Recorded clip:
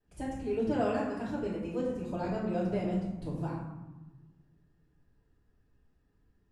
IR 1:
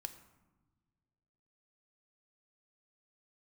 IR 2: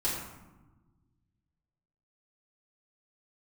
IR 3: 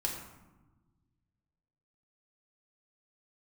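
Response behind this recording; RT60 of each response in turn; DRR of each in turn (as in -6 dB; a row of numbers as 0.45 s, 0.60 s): 2; no single decay rate, 1.1 s, 1.1 s; 8.0 dB, -9.5 dB, -1.5 dB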